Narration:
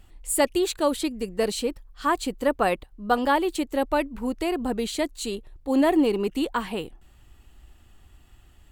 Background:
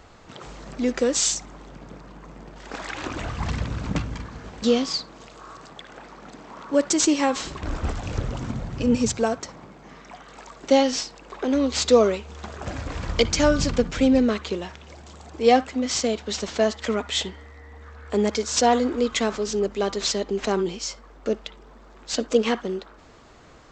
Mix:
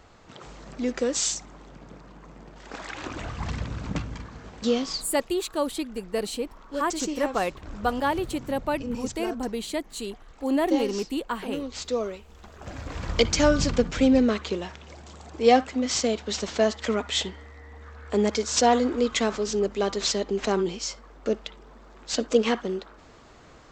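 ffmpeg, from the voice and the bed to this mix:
-filter_complex "[0:a]adelay=4750,volume=0.668[s0];[1:a]volume=2.11,afade=t=out:st=4.9:d=0.49:silence=0.421697,afade=t=in:st=12.51:d=0.66:silence=0.298538[s1];[s0][s1]amix=inputs=2:normalize=0"

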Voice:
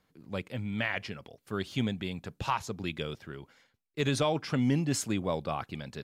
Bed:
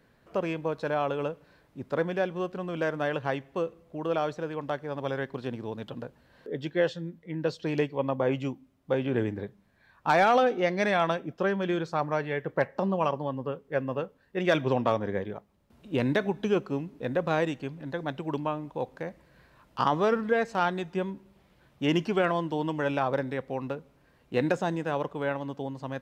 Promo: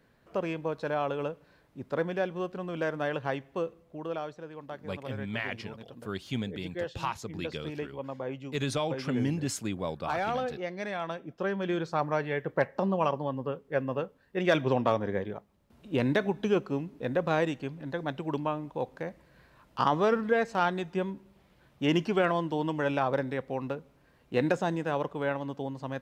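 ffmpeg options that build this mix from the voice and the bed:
-filter_complex "[0:a]adelay=4550,volume=0.75[s0];[1:a]volume=2.24,afade=t=out:st=3.7:d=0.62:silence=0.421697,afade=t=in:st=11.04:d=0.88:silence=0.354813[s1];[s0][s1]amix=inputs=2:normalize=0"

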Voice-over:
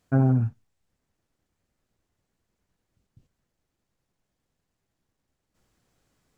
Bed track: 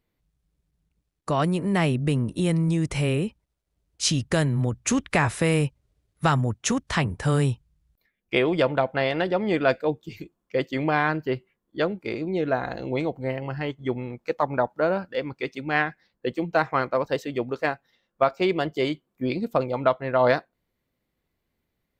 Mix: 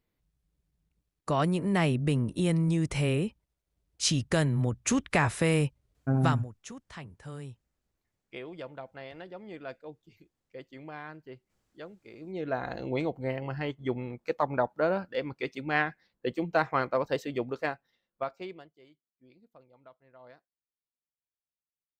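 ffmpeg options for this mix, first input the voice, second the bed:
-filter_complex "[0:a]adelay=5950,volume=0.501[s0];[1:a]volume=4.22,afade=t=out:st=6.16:d=0.33:silence=0.149624,afade=t=in:st=12.13:d=0.63:silence=0.158489,afade=t=out:st=17.33:d=1.37:silence=0.0334965[s1];[s0][s1]amix=inputs=2:normalize=0"

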